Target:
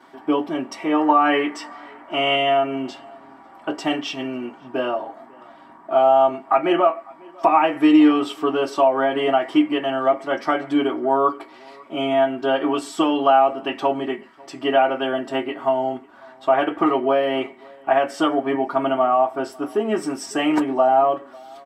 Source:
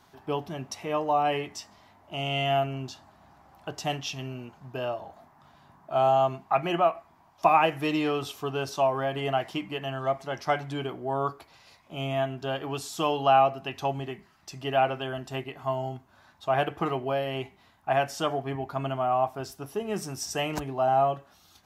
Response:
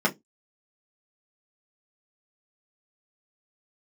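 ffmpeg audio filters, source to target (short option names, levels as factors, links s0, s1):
-filter_complex "[0:a]acompressor=threshold=0.0447:ratio=2.5,asetnsamples=n=441:p=0,asendcmd='0.99 equalizer g 12.5;2.35 equalizer g 4',equalizer=f=1500:t=o:w=1.2:g=3.5,asplit=2[s0][s1];[s1]adelay=548.1,volume=0.0562,highshelf=f=4000:g=-12.3[s2];[s0][s2]amix=inputs=2:normalize=0[s3];[1:a]atrim=start_sample=2205,asetrate=66150,aresample=44100[s4];[s3][s4]afir=irnorm=-1:irlink=0,volume=0.75"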